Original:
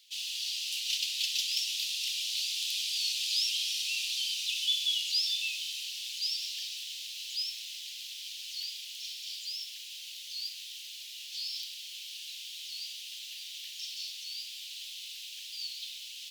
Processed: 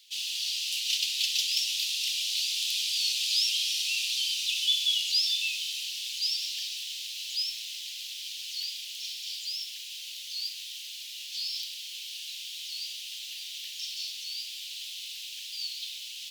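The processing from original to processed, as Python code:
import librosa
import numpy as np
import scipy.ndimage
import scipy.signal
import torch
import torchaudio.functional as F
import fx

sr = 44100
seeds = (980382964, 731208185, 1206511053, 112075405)

y = scipy.signal.sosfilt(scipy.signal.butter(2, 990.0, 'highpass', fs=sr, output='sos'), x)
y = y * librosa.db_to_amplitude(3.5)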